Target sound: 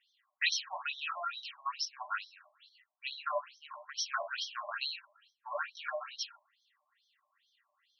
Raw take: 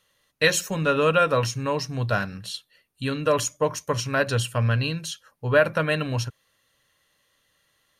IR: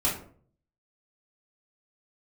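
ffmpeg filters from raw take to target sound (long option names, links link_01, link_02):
-filter_complex "[0:a]acrossover=split=410|3000[link_01][link_02][link_03];[link_02]acompressor=threshold=-28dB:ratio=3[link_04];[link_01][link_04][link_03]amix=inputs=3:normalize=0,asplit=2[link_05][link_06];[1:a]atrim=start_sample=2205,afade=type=out:start_time=0.28:duration=0.01,atrim=end_sample=12789[link_07];[link_06][link_07]afir=irnorm=-1:irlink=0,volume=-10.5dB[link_08];[link_05][link_08]amix=inputs=2:normalize=0,afftfilt=real='re*between(b*sr/1024,790*pow(4500/790,0.5+0.5*sin(2*PI*2.3*pts/sr))/1.41,790*pow(4500/790,0.5+0.5*sin(2*PI*2.3*pts/sr))*1.41)':imag='im*between(b*sr/1024,790*pow(4500/790,0.5+0.5*sin(2*PI*2.3*pts/sr))/1.41,790*pow(4500/790,0.5+0.5*sin(2*PI*2.3*pts/sr))*1.41)':win_size=1024:overlap=0.75,volume=-5dB"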